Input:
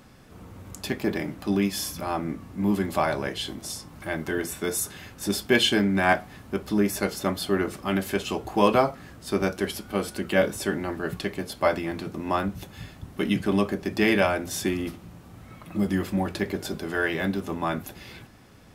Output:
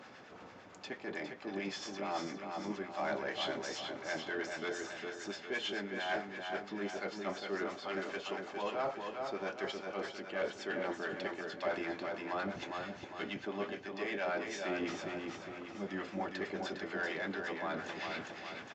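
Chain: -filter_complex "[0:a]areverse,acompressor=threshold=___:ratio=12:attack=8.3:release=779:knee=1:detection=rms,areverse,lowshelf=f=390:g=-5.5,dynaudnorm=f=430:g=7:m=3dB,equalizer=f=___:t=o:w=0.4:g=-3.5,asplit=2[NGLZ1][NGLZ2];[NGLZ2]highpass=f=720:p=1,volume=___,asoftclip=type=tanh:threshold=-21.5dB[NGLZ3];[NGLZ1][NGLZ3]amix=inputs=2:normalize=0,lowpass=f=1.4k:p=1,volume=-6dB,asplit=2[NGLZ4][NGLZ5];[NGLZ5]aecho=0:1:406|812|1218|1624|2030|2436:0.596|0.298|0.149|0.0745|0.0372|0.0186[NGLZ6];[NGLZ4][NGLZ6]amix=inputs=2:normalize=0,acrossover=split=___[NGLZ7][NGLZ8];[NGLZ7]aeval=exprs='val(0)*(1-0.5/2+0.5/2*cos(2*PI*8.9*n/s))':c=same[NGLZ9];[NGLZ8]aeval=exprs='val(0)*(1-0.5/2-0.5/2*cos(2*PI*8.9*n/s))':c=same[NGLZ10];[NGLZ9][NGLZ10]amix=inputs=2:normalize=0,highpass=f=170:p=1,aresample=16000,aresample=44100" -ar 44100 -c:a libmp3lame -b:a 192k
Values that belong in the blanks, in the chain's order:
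-33dB, 1.1k, 17dB, 820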